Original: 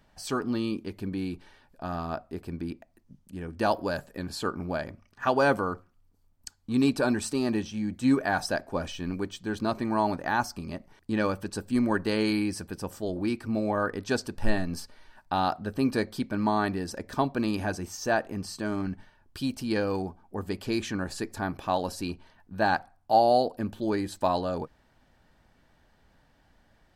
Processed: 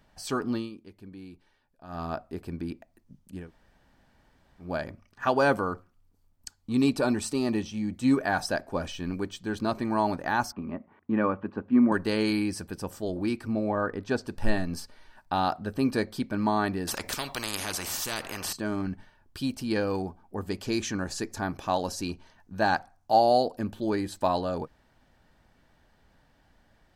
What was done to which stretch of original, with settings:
0.54–2.03 dip -12.5 dB, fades 0.16 s
3.44–4.66 room tone, crossfade 0.16 s
6.61–8.13 notch 1600 Hz, Q 8.7
10.52–11.92 speaker cabinet 100–2200 Hz, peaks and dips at 130 Hz -8 dB, 240 Hz +6 dB, 1100 Hz +5 dB, 1700 Hz -3 dB
13.53–14.28 high shelf 3700 Hz -12 dB
16.87–18.53 spectral compressor 4:1
20.49–23.64 bell 6200 Hz +7.5 dB 0.53 oct

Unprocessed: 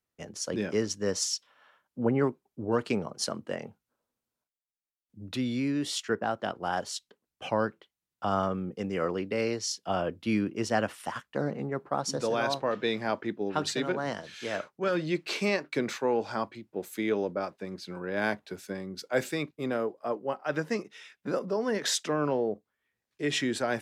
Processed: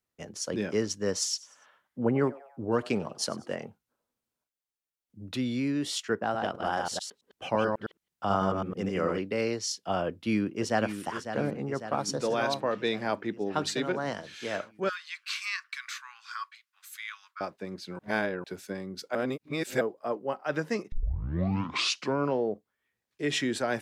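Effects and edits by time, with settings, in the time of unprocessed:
1.14–3.65 frequency-shifting echo 96 ms, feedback 47%, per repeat +140 Hz, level -21 dB
6.23–9.18 reverse delay 0.109 s, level -3 dB
10.06–10.95 echo throw 0.55 s, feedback 65%, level -9.5 dB
14.89–17.41 Chebyshev high-pass 1100 Hz, order 6
17.99–18.44 reverse
19.15–19.81 reverse
20.92 tape start 1.35 s

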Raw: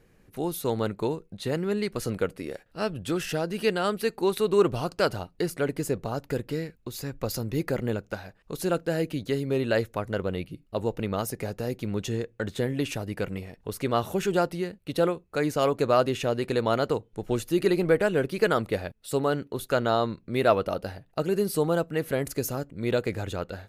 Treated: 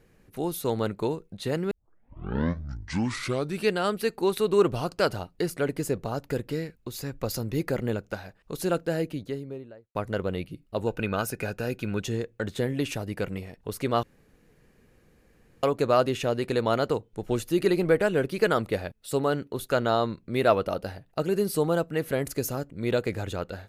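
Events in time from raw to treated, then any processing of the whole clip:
1.71 tape start 2.00 s
8.77–9.95 studio fade out
10.87–12 small resonant body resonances 1500/2500 Hz, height 15 dB, ringing for 25 ms
14.03–15.63 room tone

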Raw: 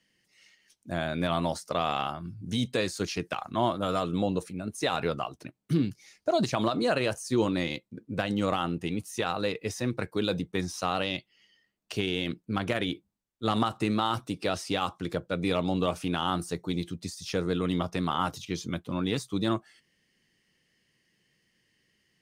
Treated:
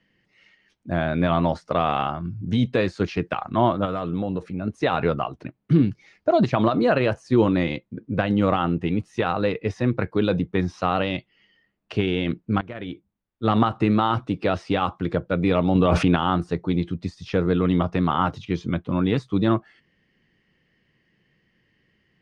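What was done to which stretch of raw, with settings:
3.85–4.62 compressor 2.5:1, threshold -32 dBFS
12.61–13.55 fade in, from -20 dB
15.75–16.16 fast leveller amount 100%
whole clip: LPF 2400 Hz 12 dB/oct; low shelf 170 Hz +4.5 dB; gain +6.5 dB

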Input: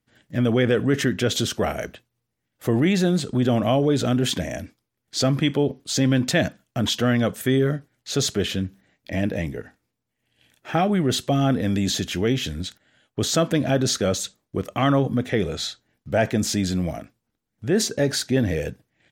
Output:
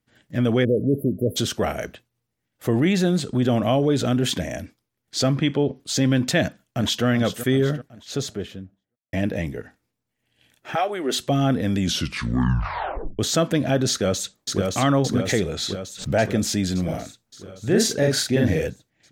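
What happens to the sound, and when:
0.64–1.36 spectral delete 660–10000 Hz
5.33–5.76 air absorption 69 m
6.41–7.05 echo throw 0.38 s, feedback 55%, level -11 dB
7.64–9.13 studio fade out
10.74–11.19 HPF 550 Hz -> 220 Hz 24 dB/oct
11.77 tape stop 1.42 s
13.9–14.62 echo throw 0.57 s, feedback 65%, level -3 dB
15.16–16.27 backwards sustainer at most 110 dB/s
16.84–18.67 doubler 44 ms -2 dB

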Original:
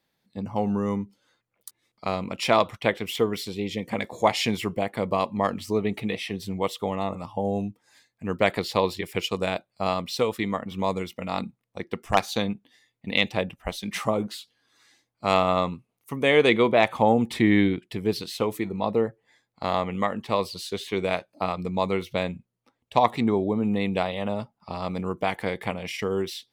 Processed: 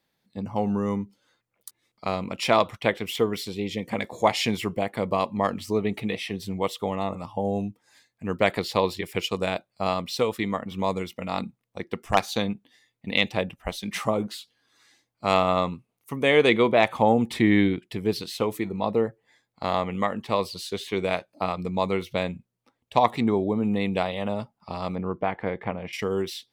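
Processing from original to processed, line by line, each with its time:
24.95–25.93 LPF 1800 Hz

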